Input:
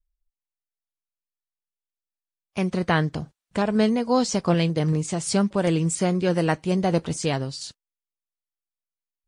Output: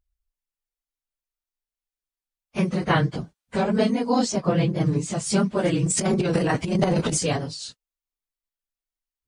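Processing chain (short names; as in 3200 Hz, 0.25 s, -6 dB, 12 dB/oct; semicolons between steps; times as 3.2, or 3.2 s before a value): phase scrambler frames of 50 ms; 4.32–4.81 high shelf 3000 Hz -9 dB; 5.85–7.23 transient shaper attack -11 dB, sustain +12 dB; record warp 45 rpm, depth 100 cents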